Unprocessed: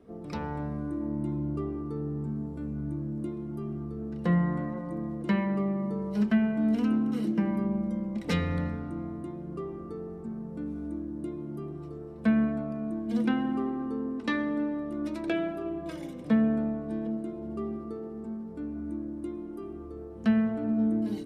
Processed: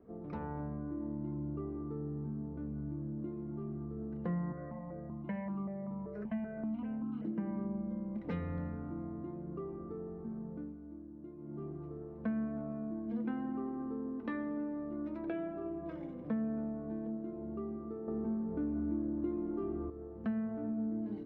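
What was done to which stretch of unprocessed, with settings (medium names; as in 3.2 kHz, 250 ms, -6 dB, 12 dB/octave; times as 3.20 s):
4.52–7.25 s: stepped phaser 5.2 Hz 890–1900 Hz
10.50–11.63 s: dip -9.5 dB, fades 0.27 s
18.08–19.90 s: gain +11.5 dB
whole clip: low-pass 1.5 kHz 12 dB/octave; compression 2:1, threshold -34 dBFS; trim -4 dB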